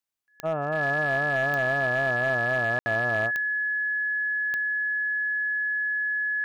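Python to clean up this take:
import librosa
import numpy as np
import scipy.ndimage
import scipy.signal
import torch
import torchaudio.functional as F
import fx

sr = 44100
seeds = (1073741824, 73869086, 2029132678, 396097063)

y = fx.fix_declip(x, sr, threshold_db=-19.0)
y = fx.fix_declick_ar(y, sr, threshold=10.0)
y = fx.notch(y, sr, hz=1700.0, q=30.0)
y = fx.fix_ambience(y, sr, seeds[0], print_start_s=0.0, print_end_s=0.5, start_s=2.79, end_s=2.86)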